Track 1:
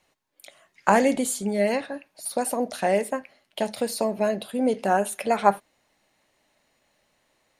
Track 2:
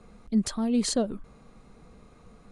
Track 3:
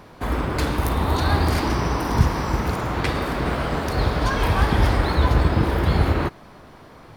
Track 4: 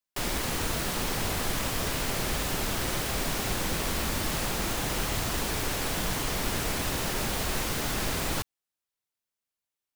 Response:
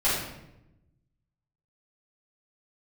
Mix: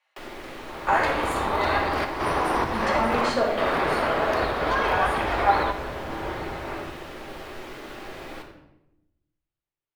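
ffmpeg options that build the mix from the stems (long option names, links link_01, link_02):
-filter_complex "[0:a]highpass=1000,volume=-7dB,asplit=3[link_01][link_02][link_03];[link_02]volume=-5.5dB[link_04];[1:a]equalizer=frequency=1500:width_type=o:width=2.9:gain=14,adelay=2400,volume=-6.5dB,asplit=2[link_05][link_06];[link_06]volume=-8.5dB[link_07];[2:a]alimiter=limit=-14dB:level=0:latency=1:release=225,dynaudnorm=framelen=330:gausssize=3:maxgain=7dB,adelay=450,volume=-4dB,asplit=2[link_08][link_09];[link_09]volume=-20dB[link_10];[3:a]equalizer=frequency=340:width_type=o:width=0.65:gain=7,acrossover=split=260[link_11][link_12];[link_12]acompressor=threshold=-33dB:ratio=6[link_13];[link_11][link_13]amix=inputs=2:normalize=0,volume=-5dB,asplit=2[link_14][link_15];[link_15]volume=-13dB[link_16];[link_03]apad=whole_len=335966[link_17];[link_08][link_17]sidechaingate=range=-33dB:threshold=-54dB:ratio=16:detection=peak[link_18];[4:a]atrim=start_sample=2205[link_19];[link_04][link_07][link_10][link_16]amix=inputs=4:normalize=0[link_20];[link_20][link_19]afir=irnorm=-1:irlink=0[link_21];[link_01][link_05][link_18][link_14][link_21]amix=inputs=5:normalize=0,acrossover=split=330 3600:gain=0.158 1 0.178[link_22][link_23][link_24];[link_22][link_23][link_24]amix=inputs=3:normalize=0"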